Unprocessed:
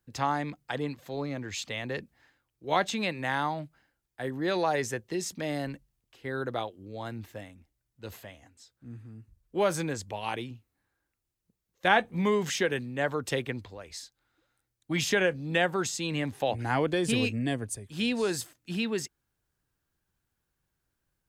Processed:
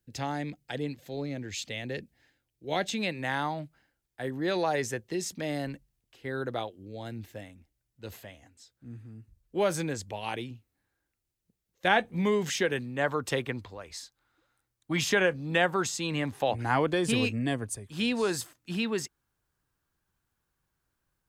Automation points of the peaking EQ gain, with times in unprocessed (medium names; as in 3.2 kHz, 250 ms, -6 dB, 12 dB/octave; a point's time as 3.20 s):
peaking EQ 1.1 kHz 0.78 oct
2.72 s -13 dB
3.33 s -3 dB
6.66 s -3 dB
7.10 s -12.5 dB
7.46 s -3.5 dB
12.44 s -3.5 dB
13.08 s +4.5 dB